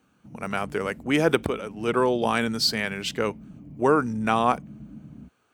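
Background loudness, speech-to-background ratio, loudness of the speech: −44.0 LKFS, 19.0 dB, −25.0 LKFS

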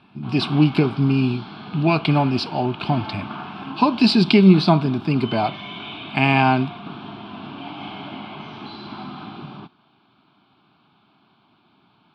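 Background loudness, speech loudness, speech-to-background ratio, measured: −34.5 LKFS, −19.0 LKFS, 15.5 dB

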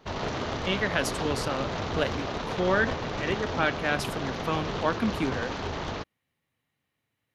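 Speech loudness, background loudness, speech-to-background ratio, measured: −30.0 LKFS, −32.5 LKFS, 2.5 dB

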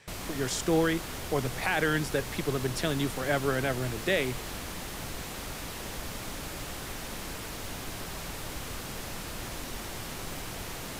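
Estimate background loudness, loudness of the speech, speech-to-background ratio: −38.0 LKFS, −30.0 LKFS, 8.0 dB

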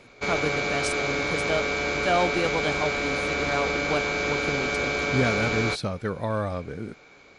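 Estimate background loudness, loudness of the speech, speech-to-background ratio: −25.5 LKFS, −30.0 LKFS, −4.5 dB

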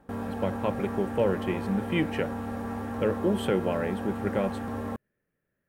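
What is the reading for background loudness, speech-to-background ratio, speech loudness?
−34.5 LKFS, 4.5 dB, −30.0 LKFS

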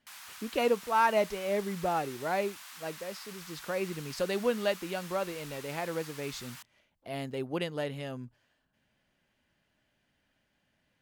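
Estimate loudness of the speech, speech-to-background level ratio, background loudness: −33.0 LKFS, 13.0 dB, −46.0 LKFS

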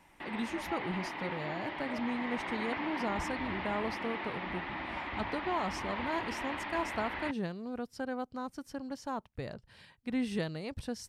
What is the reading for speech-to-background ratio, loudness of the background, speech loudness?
0.0 dB, −38.5 LKFS, −38.5 LKFS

